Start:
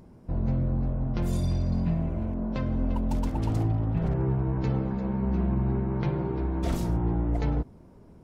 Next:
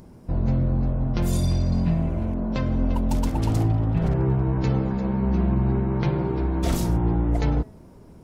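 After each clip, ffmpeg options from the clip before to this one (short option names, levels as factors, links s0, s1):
-af "highshelf=f=3700:g=7,bandreject=f=214:t=h:w=4,bandreject=f=428:t=h:w=4,bandreject=f=642:t=h:w=4,bandreject=f=856:t=h:w=4,bandreject=f=1070:t=h:w=4,bandreject=f=1284:t=h:w=4,bandreject=f=1498:t=h:w=4,bandreject=f=1712:t=h:w=4,bandreject=f=1926:t=h:w=4,bandreject=f=2140:t=h:w=4,bandreject=f=2354:t=h:w=4,bandreject=f=2568:t=h:w=4,volume=1.68"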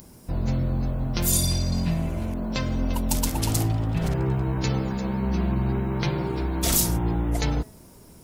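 -af "crystalizer=i=6.5:c=0,volume=0.708"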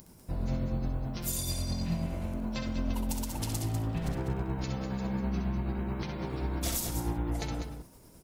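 -filter_complex "[0:a]alimiter=limit=0.168:level=0:latency=1:release=226,tremolo=f=9.3:d=0.4,asplit=2[s0][s1];[s1]aecho=0:1:65|197:0.473|0.376[s2];[s0][s2]amix=inputs=2:normalize=0,volume=0.531"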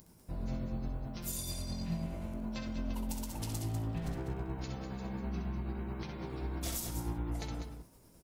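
-filter_complex "[0:a]asplit=2[s0][s1];[s1]adelay=18,volume=0.282[s2];[s0][s2]amix=inputs=2:normalize=0,volume=0.501"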